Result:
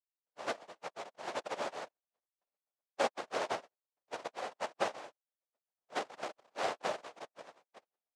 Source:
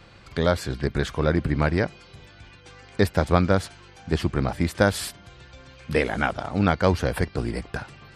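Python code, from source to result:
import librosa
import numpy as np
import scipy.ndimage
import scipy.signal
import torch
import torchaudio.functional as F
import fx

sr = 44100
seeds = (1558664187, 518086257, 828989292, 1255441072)

y = fx.bin_expand(x, sr, power=3.0)
y = fx.tilt_eq(y, sr, slope=-4.5, at=(1.86, 3.14))
y = np.clip(y, -10.0 ** (-17.5 / 20.0), 10.0 ** (-17.5 / 20.0))
y = fx.noise_vocoder(y, sr, seeds[0], bands=1)
y = fx.bandpass_q(y, sr, hz=630.0, q=2.0)
y = F.gain(torch.from_numpy(y), 3.5).numpy()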